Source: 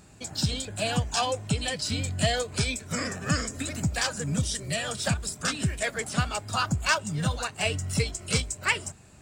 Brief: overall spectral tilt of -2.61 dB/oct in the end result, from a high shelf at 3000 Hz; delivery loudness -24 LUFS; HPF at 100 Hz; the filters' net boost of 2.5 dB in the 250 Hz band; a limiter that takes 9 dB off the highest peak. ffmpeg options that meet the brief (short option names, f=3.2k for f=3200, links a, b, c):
-af "highpass=100,equalizer=f=250:t=o:g=4,highshelf=f=3k:g=7.5,volume=3dB,alimiter=limit=-11.5dB:level=0:latency=1"